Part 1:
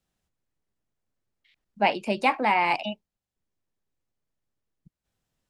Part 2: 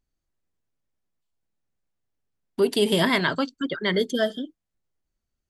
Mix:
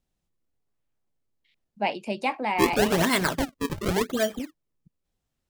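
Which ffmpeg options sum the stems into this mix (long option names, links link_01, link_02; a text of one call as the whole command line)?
ffmpeg -i stem1.wav -i stem2.wav -filter_complex "[0:a]equalizer=frequency=1400:width=1.5:gain=-5.5,volume=-3dB[link_01];[1:a]acrusher=samples=35:mix=1:aa=0.000001:lfo=1:lforange=56:lforate=0.88,volume=-1.5dB[link_02];[link_01][link_02]amix=inputs=2:normalize=0" out.wav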